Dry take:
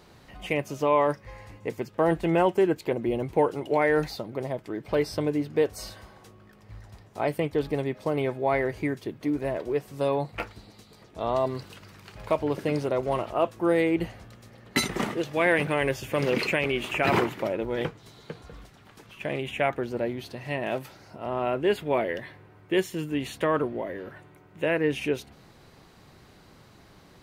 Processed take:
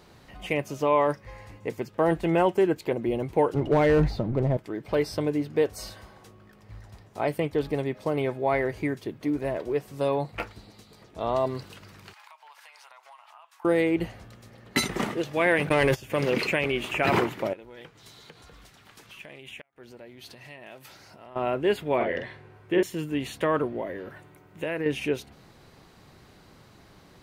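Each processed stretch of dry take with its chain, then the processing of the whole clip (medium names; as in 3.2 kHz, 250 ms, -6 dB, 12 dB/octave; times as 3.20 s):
3.54–4.57 s: companding laws mixed up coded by mu + RIAA curve playback + overload inside the chain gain 15 dB
12.13–13.65 s: elliptic high-pass 870 Hz, stop band 80 dB + compression 10:1, threshold -47 dBFS
15.69–16.10 s: gate -30 dBFS, range -45 dB + waveshaping leveller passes 1 + level flattener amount 100%
17.53–21.36 s: compression 3:1, threshold -44 dBFS + tilt shelf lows -4.5 dB, about 1.2 kHz + inverted gate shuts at -29 dBFS, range -32 dB
21.96–22.83 s: low-pass that closes with the level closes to 1.6 kHz, closed at -20 dBFS + doubling 46 ms -3 dB
24.10–24.86 s: treble shelf 6.2 kHz +5.5 dB + compression 4:1, threshold -26 dBFS
whole clip: none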